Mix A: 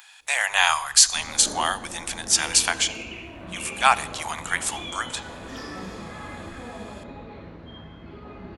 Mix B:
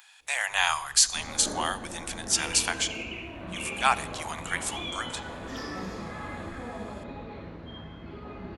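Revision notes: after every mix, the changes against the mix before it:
speech -5.5 dB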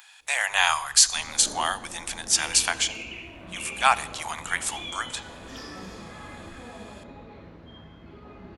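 speech +3.5 dB; second sound -4.5 dB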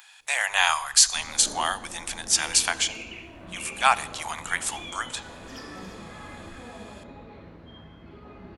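first sound: send -6.5 dB

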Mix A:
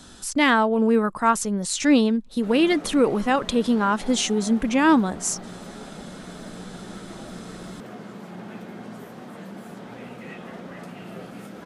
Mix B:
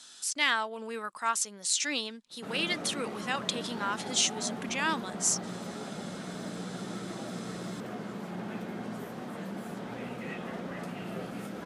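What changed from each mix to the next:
speech: add band-pass filter 5.5 kHz, Q 0.61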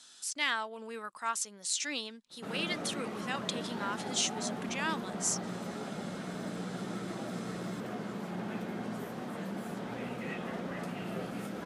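speech -4.5 dB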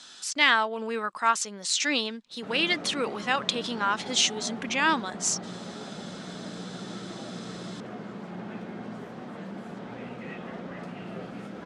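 speech +11.5 dB; master: add distance through air 83 m

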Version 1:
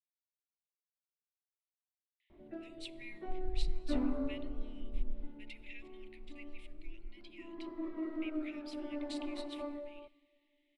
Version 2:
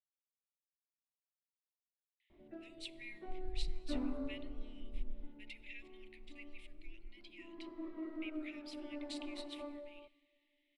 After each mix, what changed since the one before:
background -5.0 dB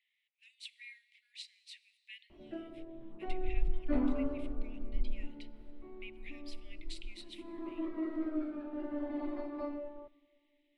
speech: entry -2.20 s; background +7.5 dB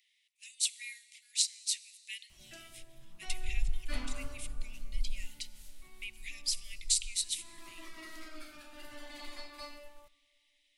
background: add FFT filter 150 Hz 0 dB, 310 Hz -21 dB, 2.7 kHz +7 dB; master: remove distance through air 480 m

